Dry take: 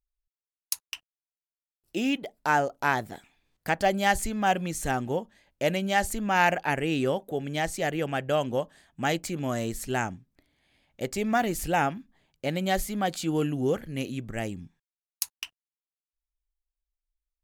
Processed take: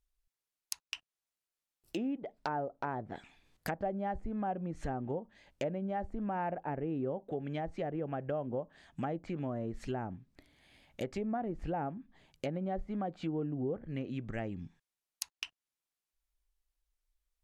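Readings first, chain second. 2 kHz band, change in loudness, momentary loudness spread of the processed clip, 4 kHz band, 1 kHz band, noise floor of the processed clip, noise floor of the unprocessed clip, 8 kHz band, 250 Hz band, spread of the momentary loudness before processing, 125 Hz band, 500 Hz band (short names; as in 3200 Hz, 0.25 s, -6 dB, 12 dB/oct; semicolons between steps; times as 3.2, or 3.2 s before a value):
-18.0 dB, -10.0 dB, 8 LU, -14.0 dB, -11.5 dB, under -85 dBFS, under -85 dBFS, -15.0 dB, -7.0 dB, 11 LU, -7.0 dB, -8.5 dB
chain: treble ducked by the level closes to 800 Hz, closed at -24.5 dBFS; compressor 2.5:1, threshold -43 dBFS, peak gain reduction 14.5 dB; gain +4 dB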